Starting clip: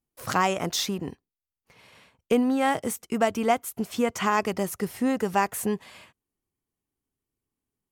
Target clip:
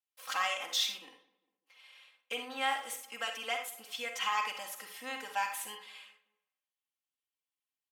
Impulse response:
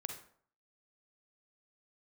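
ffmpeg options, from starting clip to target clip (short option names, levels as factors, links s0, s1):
-filter_complex "[0:a]highpass=910,equalizer=f=3100:w=1.5:g=9.5,aecho=1:1:3.8:0.99,asplit=2[s0][s1];[s1]adelay=200,lowpass=f=1400:p=1,volume=0.112,asplit=2[s2][s3];[s3]adelay=200,lowpass=f=1400:p=1,volume=0.44,asplit=2[s4][s5];[s5]adelay=200,lowpass=f=1400:p=1,volume=0.44[s6];[s0][s2][s4][s6]amix=inputs=4:normalize=0[s7];[1:a]atrim=start_sample=2205,afade=t=out:st=0.18:d=0.01,atrim=end_sample=8379[s8];[s7][s8]afir=irnorm=-1:irlink=0,volume=0.355"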